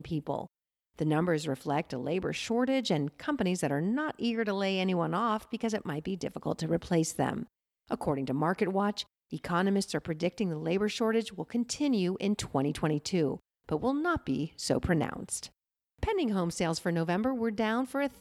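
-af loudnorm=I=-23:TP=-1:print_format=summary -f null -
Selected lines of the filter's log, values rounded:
Input Integrated:    -31.3 LUFS
Input True Peak:     -14.7 dBTP
Input LRA:             1.4 LU
Input Threshold:     -41.4 LUFS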